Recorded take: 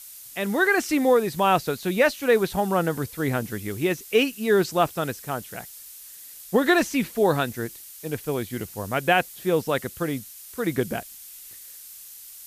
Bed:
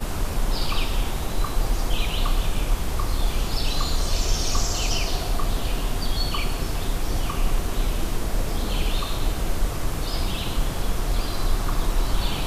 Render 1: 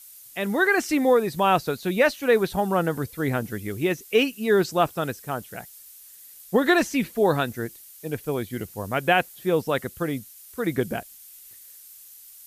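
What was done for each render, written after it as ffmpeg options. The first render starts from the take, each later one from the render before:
-af "afftdn=nr=6:nf=-44"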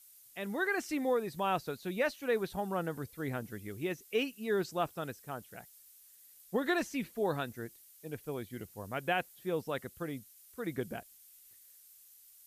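-af "volume=0.251"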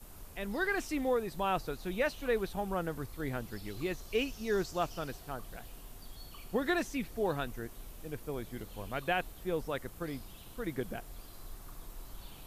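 -filter_complex "[1:a]volume=0.0562[s0];[0:a][s0]amix=inputs=2:normalize=0"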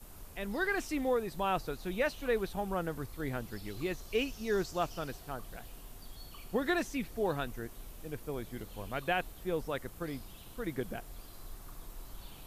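-af anull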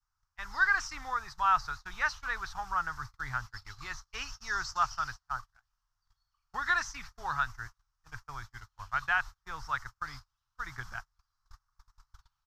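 -af "agate=range=0.02:threshold=0.01:ratio=16:detection=peak,firequalizer=gain_entry='entry(120,0);entry(190,-20);entry(500,-24);entry(860,4);entry(1300,13);entry(2400,-3);entry(3500,-2);entry(5400,11);entry(9600,-14)':delay=0.05:min_phase=1"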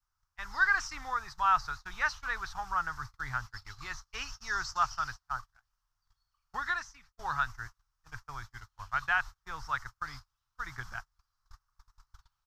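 -filter_complex "[0:a]asplit=2[s0][s1];[s0]atrim=end=7.19,asetpts=PTS-STARTPTS,afade=t=out:st=6.57:d=0.62:c=qua:silence=0.1[s2];[s1]atrim=start=7.19,asetpts=PTS-STARTPTS,afade=t=in:d=0.004:c=hsin:silence=0.1[s3];[s2][s3]concat=n=2:v=0:a=1"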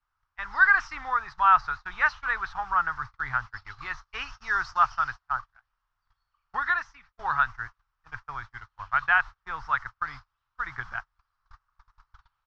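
-af "lowpass=3200,equalizer=f=1500:w=0.36:g=7.5"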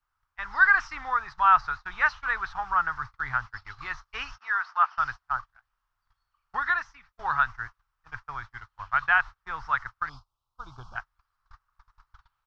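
-filter_complex "[0:a]asettb=1/sr,asplit=3[s0][s1][s2];[s0]atrim=end=4.384[s3];[s1]atrim=start=4.38:end=4.98,asetpts=PTS-STARTPTS,afade=t=in:d=0.004:c=qsin,afade=t=out:st=0.596:d=0.004:c=qsin,highpass=790,lowpass=2700[s4];[s2]atrim=start=4.976[s5];[s3][s4]acrossfade=d=0.004:c1=hsin:c2=qsin[s6];[s6][s5]acrossfade=d=0.004:c1=qsin:c2=hsin,asettb=1/sr,asplit=3[s7][s8][s9];[s7]atrim=end=10.094[s10];[s8]atrim=start=10.09:end=10.96,asetpts=PTS-STARTPTS,afade=t=in:d=0.004:c=qsin,afade=t=out:st=0.866:d=0.004:c=qsin,asuperstop=centerf=1900:order=4:qfactor=0.77[s11];[s9]atrim=start=10.956[s12];[s10][s11]acrossfade=d=0.004:c1=hsin:c2=qsin[s13];[s13][s12]acrossfade=d=0.004:c1=qsin:c2=hsin"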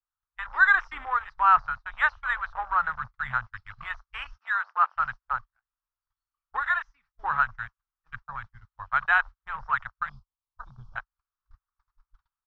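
-af "afwtdn=0.0141"

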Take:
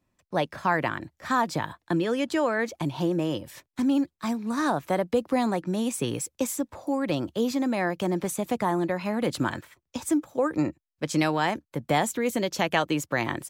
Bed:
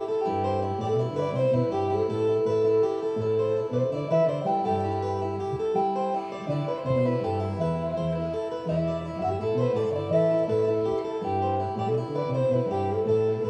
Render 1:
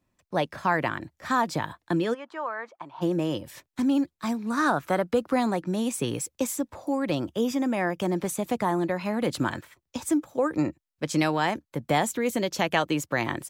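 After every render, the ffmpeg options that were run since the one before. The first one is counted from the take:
-filter_complex "[0:a]asplit=3[s0][s1][s2];[s0]afade=t=out:st=2.13:d=0.02[s3];[s1]bandpass=f=1100:t=q:w=2.2,afade=t=in:st=2.13:d=0.02,afade=t=out:st=3.01:d=0.02[s4];[s2]afade=t=in:st=3.01:d=0.02[s5];[s3][s4][s5]amix=inputs=3:normalize=0,asettb=1/sr,asplit=3[s6][s7][s8];[s6]atrim=end=4.514[s9];[s7]atrim=start=4.51:end=5.4,asetpts=PTS-STARTPTS,afade=t=in:d=0.004:c=qsin,afade=t=out:st=0.886:d=0.004:c=qsin,equalizer=f=1400:t=o:w=0.47:g=8.5[s10];[s8]atrim=start=5.396[s11];[s9][s10]acrossfade=d=0.004:c1=hsin:c2=qsin[s12];[s12][s11]acrossfade=d=0.004:c1=qsin:c2=hsin,asettb=1/sr,asplit=3[s13][s14][s15];[s13]atrim=end=7.284[s16];[s14]atrim=start=7.28:end=8.02,asetpts=PTS-STARTPTS,afade=t=in:d=0.004:c=qsin,afade=t=out:st=0.736:d=0.004:c=qsin,asuperstop=centerf=4200:order=8:qfactor=5.7[s17];[s15]atrim=start=8.016[s18];[s16][s17]acrossfade=d=0.004:c1=hsin:c2=qsin[s19];[s19][s18]acrossfade=d=0.004:c1=qsin:c2=hsin"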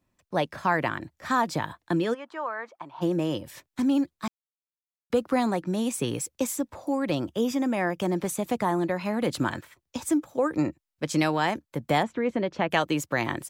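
-filter_complex "[0:a]asplit=3[s0][s1][s2];[s0]afade=t=out:st=12.02:d=0.02[s3];[s1]lowpass=2100,afade=t=in:st=12.02:d=0.02,afade=t=out:st=12.69:d=0.02[s4];[s2]afade=t=in:st=12.69:d=0.02[s5];[s3][s4][s5]amix=inputs=3:normalize=0,asplit=3[s6][s7][s8];[s6]atrim=end=4.28,asetpts=PTS-STARTPTS,afade=t=out:st=4.276:d=0.004:c=hsin[s9];[s7]atrim=start=4.28:end=5.1,asetpts=PTS-STARTPTS,volume=0[s10];[s8]atrim=start=5.1,asetpts=PTS-STARTPTS,afade=t=in:d=0.004:c=hsin[s11];[s9][s10][s11]concat=n=3:v=0:a=1"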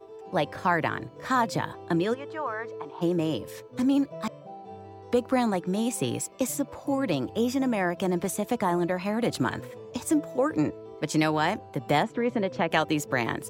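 -filter_complex "[1:a]volume=0.133[s0];[0:a][s0]amix=inputs=2:normalize=0"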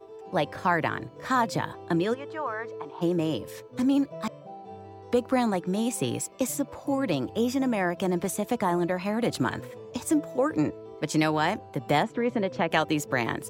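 -af anull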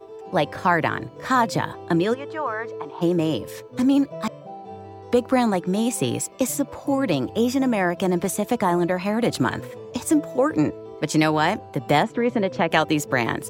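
-af "volume=1.78"

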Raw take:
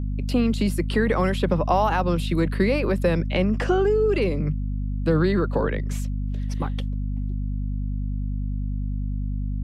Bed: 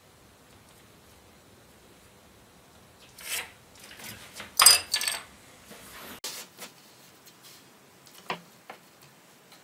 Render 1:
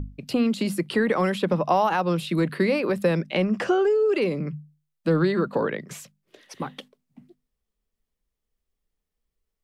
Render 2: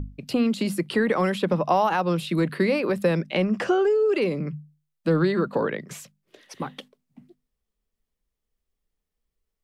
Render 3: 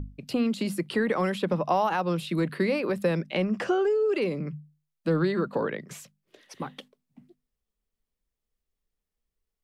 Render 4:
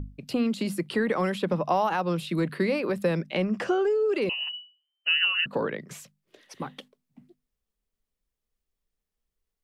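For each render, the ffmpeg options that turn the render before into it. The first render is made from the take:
-af "bandreject=f=50:t=h:w=6,bandreject=f=100:t=h:w=6,bandreject=f=150:t=h:w=6,bandreject=f=200:t=h:w=6,bandreject=f=250:t=h:w=6"
-af anull
-af "volume=0.668"
-filter_complex "[0:a]asettb=1/sr,asplit=3[s0][s1][s2];[s0]atrim=end=4.294[s3];[s1]atrim=start=4.29:end=5.46,asetpts=PTS-STARTPTS,afade=t=in:d=0.004:c=qsin,afade=t=out:st=1.166:d=0.004:c=qsin,lowpass=f=2600:t=q:w=0.5098,lowpass=f=2600:t=q:w=0.6013,lowpass=f=2600:t=q:w=0.9,lowpass=f=2600:t=q:w=2.563,afreqshift=-3100[s4];[s2]atrim=start=5.456[s5];[s3][s4]acrossfade=d=0.004:c1=hsin:c2=qsin[s6];[s6][s5]acrossfade=d=0.004:c1=qsin:c2=hsin"

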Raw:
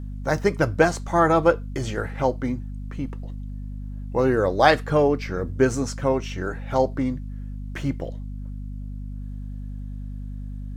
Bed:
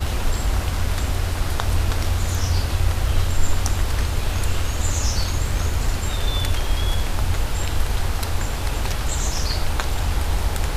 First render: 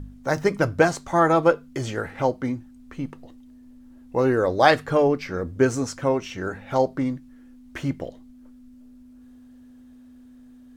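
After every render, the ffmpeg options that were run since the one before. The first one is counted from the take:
-af "bandreject=f=50:t=h:w=4,bandreject=f=100:t=h:w=4,bandreject=f=150:t=h:w=4,bandreject=f=200:t=h:w=4"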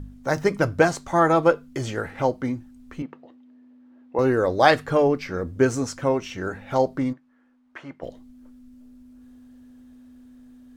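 -filter_complex "[0:a]asettb=1/sr,asplit=3[s0][s1][s2];[s0]atrim=end=3.024[s3];[s1]atrim=start=3.02:end=4.19,asetpts=PTS-STARTPTS,afade=t=in:d=0.004:c=qsin,afade=t=out:st=1.166:d=0.004:c=qsin,highpass=260,lowpass=2600[s4];[s2]atrim=start=4.186[s5];[s3][s4]acrossfade=d=0.004:c1=hsin:c2=qsin[s6];[s6][s5]acrossfade=d=0.004:c1=qsin:c2=hsin,asplit=3[s7][s8][s9];[s7]afade=t=out:st=7.12:d=0.02[s10];[s8]bandpass=f=1100:t=q:w=1.1,afade=t=in:st=7.12:d=0.02,afade=t=out:st=8.02:d=0.02[s11];[s9]afade=t=in:st=8.02:d=0.02[s12];[s10][s11][s12]amix=inputs=3:normalize=0"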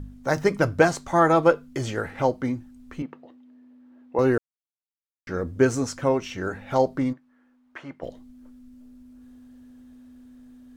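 -filter_complex "[0:a]asplit=3[s0][s1][s2];[s0]atrim=end=4.38,asetpts=PTS-STARTPTS,afade=t=out:st=4.376:d=0.004:c=hsin[s3];[s1]atrim=start=4.38:end=5.27,asetpts=PTS-STARTPTS,volume=0[s4];[s2]atrim=start=5.27,asetpts=PTS-STARTPTS,afade=t=in:d=0.004:c=hsin[s5];[s3][s4][s5]concat=n=3:v=0:a=1"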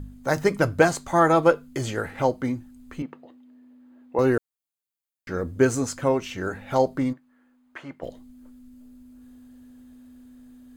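-af "highshelf=f=7400:g=7.5,bandreject=f=5600:w=9.9"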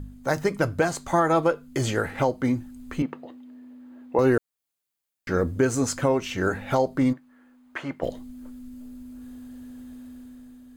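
-af "dynaudnorm=f=160:g=9:m=2.24,alimiter=limit=0.282:level=0:latency=1:release=344"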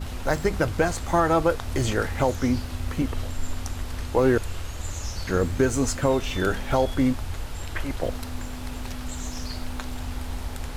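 -filter_complex "[1:a]volume=0.299[s0];[0:a][s0]amix=inputs=2:normalize=0"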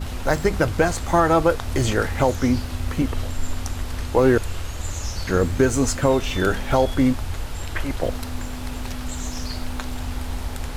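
-af "volume=1.5"

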